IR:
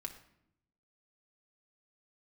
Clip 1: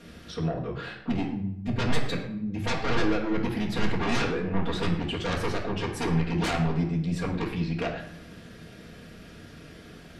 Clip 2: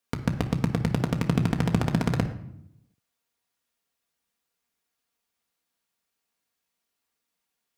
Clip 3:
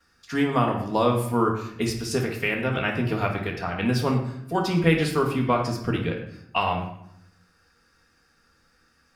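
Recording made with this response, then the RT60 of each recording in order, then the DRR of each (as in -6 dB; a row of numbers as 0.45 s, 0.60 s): 2; 0.75 s, 0.75 s, 0.75 s; -6.0 dB, 3.0 dB, -11.5 dB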